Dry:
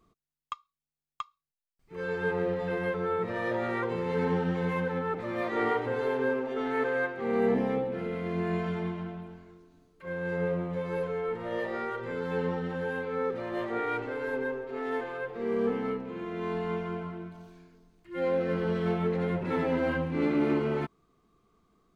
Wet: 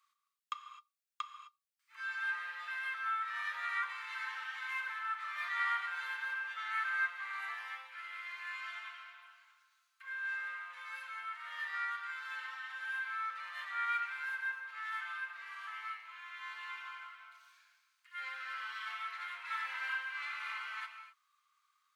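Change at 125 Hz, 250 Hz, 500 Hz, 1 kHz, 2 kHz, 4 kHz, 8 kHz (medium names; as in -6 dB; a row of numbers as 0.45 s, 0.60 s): under -40 dB, under -40 dB, under -40 dB, -4.5 dB, +1.0 dB, +1.0 dB, no reading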